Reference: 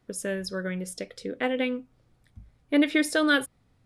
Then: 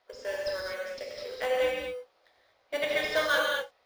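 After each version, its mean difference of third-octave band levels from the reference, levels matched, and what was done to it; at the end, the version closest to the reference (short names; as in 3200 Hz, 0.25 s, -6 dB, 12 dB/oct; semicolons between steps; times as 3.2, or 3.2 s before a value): 11.5 dB: G.711 law mismatch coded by mu; elliptic band-pass 530–5000 Hz, stop band 40 dB; in parallel at -9 dB: sample-rate reducer 2600 Hz, jitter 0%; on the sum: non-linear reverb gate 0.27 s flat, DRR -2.5 dB; gain -5.5 dB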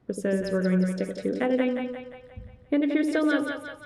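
7.0 dB: HPF 340 Hz 6 dB/oct; tilt -4 dB/oct; compressor 6:1, threshold -25 dBFS, peak gain reduction 11 dB; on a send: split-band echo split 550 Hz, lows 81 ms, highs 0.176 s, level -5 dB; on the sum: gain +3.5 dB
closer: second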